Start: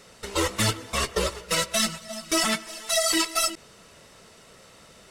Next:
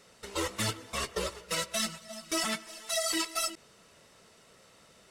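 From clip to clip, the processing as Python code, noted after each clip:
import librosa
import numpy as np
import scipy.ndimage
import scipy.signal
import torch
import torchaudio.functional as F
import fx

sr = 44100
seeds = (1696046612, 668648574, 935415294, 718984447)

y = fx.low_shelf(x, sr, hz=66.0, db=-6.5)
y = y * 10.0 ** (-7.5 / 20.0)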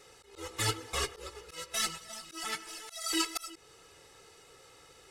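y = x + 0.78 * np.pad(x, (int(2.4 * sr / 1000.0), 0))[:len(x)]
y = fx.auto_swell(y, sr, attack_ms=338.0)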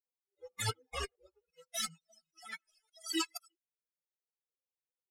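y = fx.bin_expand(x, sr, power=3.0)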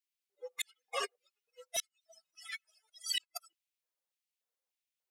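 y = fx.filter_lfo_highpass(x, sr, shape='square', hz=1.7, low_hz=550.0, high_hz=2500.0, q=1.6)
y = fx.gate_flip(y, sr, shuts_db=-24.0, range_db=-41)
y = y * 10.0 ** (2.5 / 20.0)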